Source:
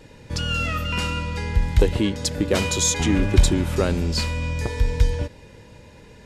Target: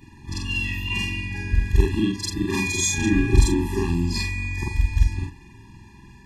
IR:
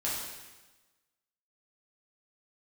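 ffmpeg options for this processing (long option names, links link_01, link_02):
-af "afftfilt=real='re':imag='-im':win_size=4096:overlap=0.75,afftfilt=real='re*eq(mod(floor(b*sr/1024/400),2),0)':imag='im*eq(mod(floor(b*sr/1024/400),2),0)':win_size=1024:overlap=0.75,volume=5dB"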